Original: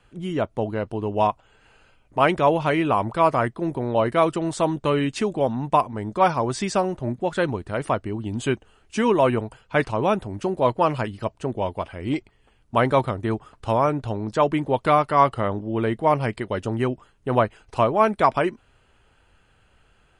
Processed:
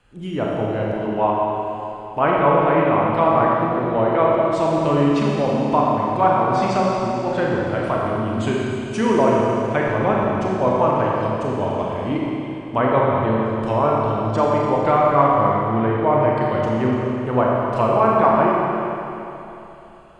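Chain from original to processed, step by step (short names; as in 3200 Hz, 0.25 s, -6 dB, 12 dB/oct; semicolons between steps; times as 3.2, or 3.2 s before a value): treble ducked by the level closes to 1900 Hz, closed at -18 dBFS; Schroeder reverb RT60 3.1 s, combs from 28 ms, DRR -4 dB; gain -1 dB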